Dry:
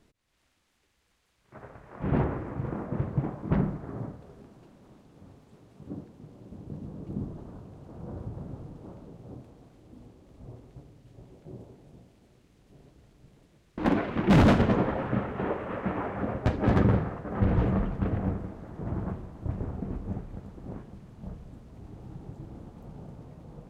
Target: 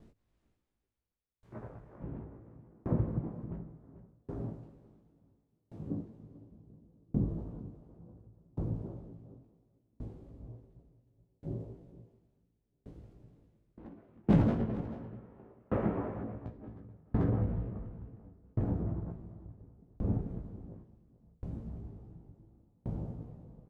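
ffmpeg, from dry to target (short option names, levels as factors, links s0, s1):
-filter_complex "[0:a]tiltshelf=f=890:g=8,asplit=2[s0][s1];[s1]adelay=18,volume=0.668[s2];[s0][s2]amix=inputs=2:normalize=0,aecho=1:1:439:0.398,acompressor=threshold=0.0631:ratio=3,aeval=exprs='val(0)*pow(10,-35*if(lt(mod(0.7*n/s,1),2*abs(0.7)/1000),1-mod(0.7*n/s,1)/(2*abs(0.7)/1000),(mod(0.7*n/s,1)-2*abs(0.7)/1000)/(1-2*abs(0.7)/1000))/20)':c=same"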